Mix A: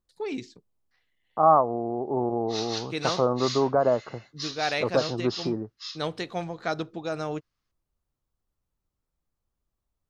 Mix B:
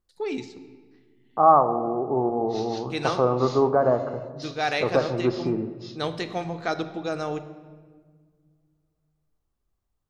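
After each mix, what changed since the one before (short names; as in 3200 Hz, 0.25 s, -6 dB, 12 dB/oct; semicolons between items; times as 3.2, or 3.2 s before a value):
background -9.0 dB; reverb: on, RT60 1.6 s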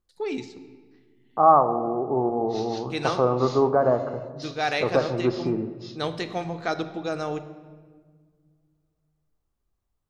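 none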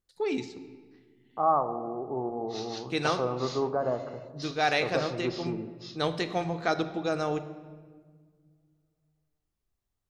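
second voice -8.5 dB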